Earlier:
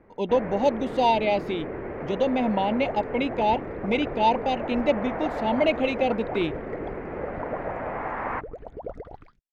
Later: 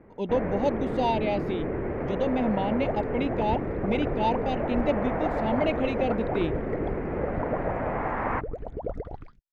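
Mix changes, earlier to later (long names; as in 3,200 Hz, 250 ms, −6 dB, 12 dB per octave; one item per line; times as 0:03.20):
speech −6.5 dB
master: add low-shelf EQ 330 Hz +8 dB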